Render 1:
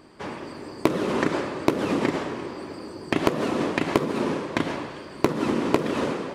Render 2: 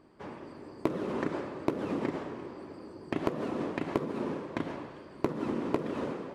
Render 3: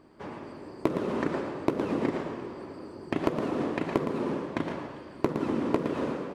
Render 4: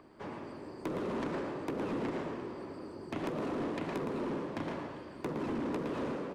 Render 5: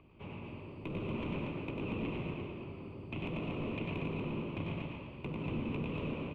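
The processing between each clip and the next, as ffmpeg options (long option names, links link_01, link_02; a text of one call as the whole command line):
ffmpeg -i in.wav -af "highshelf=frequency=2000:gain=-9.5,volume=-8dB" out.wav
ffmpeg -i in.wav -af "aecho=1:1:114:0.398,volume=3dB" out.wav
ffmpeg -i in.wav -filter_complex "[0:a]acrossover=split=140|390|3800[link_01][link_02][link_03][link_04];[link_03]acompressor=mode=upward:threshold=-56dB:ratio=2.5[link_05];[link_01][link_02][link_05][link_04]amix=inputs=4:normalize=0,asoftclip=type=tanh:threshold=-28.5dB,volume=-2dB" out.wav
ffmpeg -i in.wav -filter_complex "[0:a]firequalizer=gain_entry='entry(100,0);entry(270,-13);entry(760,-16);entry(1100,-14);entry(1700,-25);entry(2500,1);entry(4900,-29)':delay=0.05:min_phase=1,asplit=2[link_01][link_02];[link_02]aecho=0:1:96.21|236.2:0.631|0.562[link_03];[link_01][link_03]amix=inputs=2:normalize=0,volume=6.5dB" out.wav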